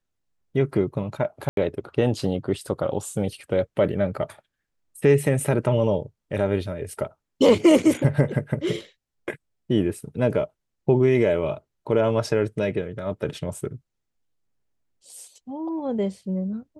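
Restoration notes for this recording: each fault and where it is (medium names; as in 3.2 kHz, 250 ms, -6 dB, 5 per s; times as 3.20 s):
1.49–1.57 s: dropout 82 ms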